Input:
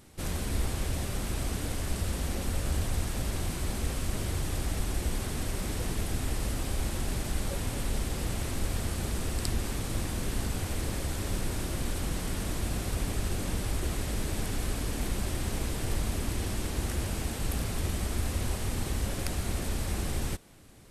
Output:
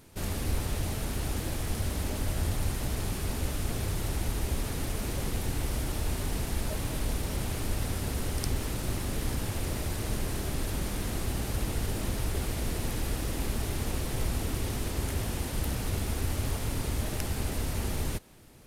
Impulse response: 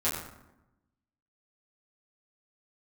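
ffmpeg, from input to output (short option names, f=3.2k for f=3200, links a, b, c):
-af "aresample=32000,aresample=44100,asetrate=49392,aresample=44100"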